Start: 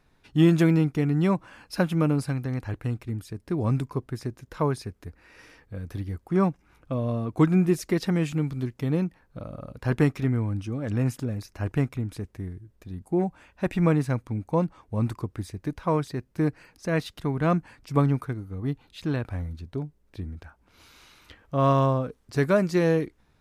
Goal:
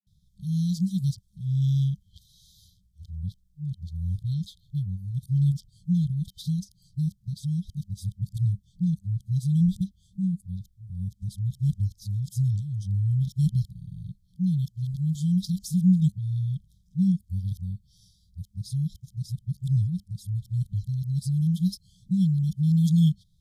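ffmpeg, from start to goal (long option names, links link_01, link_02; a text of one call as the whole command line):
ffmpeg -i in.wav -af "areverse,afftfilt=real='re*(1-between(b*sr/4096,200,3100))':imag='im*(1-between(b*sr/4096,200,3100))':win_size=4096:overlap=0.75,equalizer=frequency=100:width_type=o:width=0.67:gain=4,equalizer=frequency=250:width_type=o:width=0.67:gain=6,equalizer=frequency=2500:width_type=o:width=0.67:gain=-8" out.wav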